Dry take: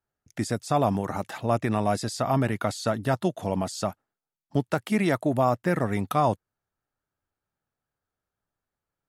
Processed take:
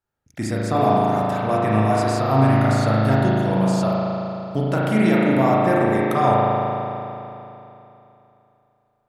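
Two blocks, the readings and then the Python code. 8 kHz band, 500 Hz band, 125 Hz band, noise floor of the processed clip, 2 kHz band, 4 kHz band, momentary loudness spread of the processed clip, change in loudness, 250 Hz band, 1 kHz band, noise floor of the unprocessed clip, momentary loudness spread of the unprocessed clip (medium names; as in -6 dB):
0.0 dB, +7.0 dB, +9.0 dB, -67 dBFS, +7.0 dB, +3.5 dB, 11 LU, +7.5 dB, +8.0 dB, +8.0 dB, under -85 dBFS, 7 LU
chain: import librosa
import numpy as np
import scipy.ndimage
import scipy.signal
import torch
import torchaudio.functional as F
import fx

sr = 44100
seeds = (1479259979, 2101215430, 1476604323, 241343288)

y = fx.rev_spring(x, sr, rt60_s=3.0, pass_ms=(37,), chirp_ms=20, drr_db=-6.0)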